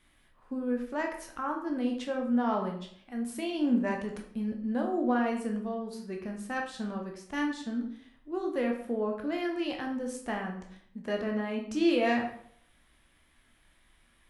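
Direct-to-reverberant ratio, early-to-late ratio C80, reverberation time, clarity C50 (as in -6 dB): 1.0 dB, 10.0 dB, 0.60 s, 6.5 dB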